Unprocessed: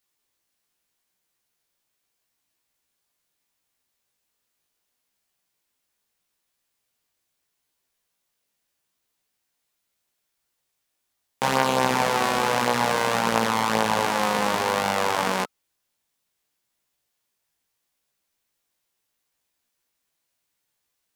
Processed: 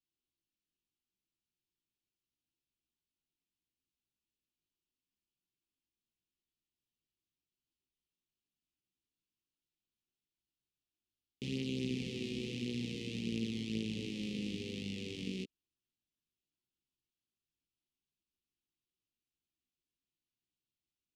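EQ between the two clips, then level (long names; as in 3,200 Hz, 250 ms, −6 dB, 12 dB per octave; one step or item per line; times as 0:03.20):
elliptic band-stop filter 360–2,700 Hz, stop band 40 dB
head-to-tape spacing loss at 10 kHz 22 dB
−6.5 dB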